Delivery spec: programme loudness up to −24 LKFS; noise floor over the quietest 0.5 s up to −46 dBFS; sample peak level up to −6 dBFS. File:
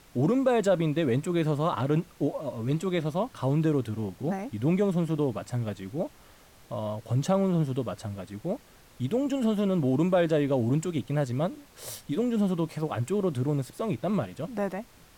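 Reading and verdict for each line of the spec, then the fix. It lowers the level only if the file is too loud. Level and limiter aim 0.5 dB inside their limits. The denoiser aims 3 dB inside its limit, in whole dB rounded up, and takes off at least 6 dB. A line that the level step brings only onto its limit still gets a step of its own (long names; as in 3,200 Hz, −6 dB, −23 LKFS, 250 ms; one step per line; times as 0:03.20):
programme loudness −28.5 LKFS: in spec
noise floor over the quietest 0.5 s −54 dBFS: in spec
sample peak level −14.5 dBFS: in spec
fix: no processing needed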